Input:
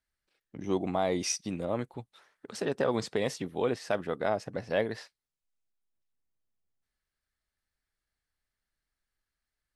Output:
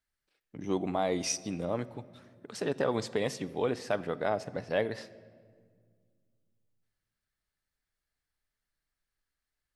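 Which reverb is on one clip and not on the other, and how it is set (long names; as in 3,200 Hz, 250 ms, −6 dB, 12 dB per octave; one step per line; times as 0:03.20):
rectangular room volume 3,000 cubic metres, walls mixed, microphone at 0.38 metres
level −1 dB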